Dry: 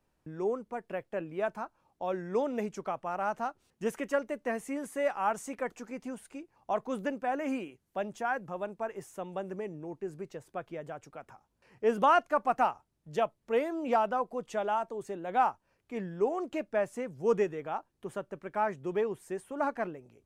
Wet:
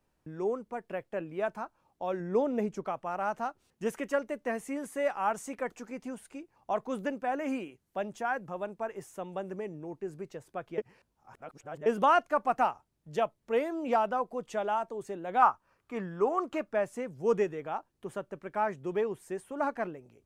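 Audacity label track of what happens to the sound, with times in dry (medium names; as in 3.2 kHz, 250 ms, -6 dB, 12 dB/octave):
2.200000	2.860000	tilt shelf lows +4 dB, about 930 Hz
10.780000	11.860000	reverse
15.420000	16.740000	peaking EQ 1.2 kHz +11.5 dB 0.68 oct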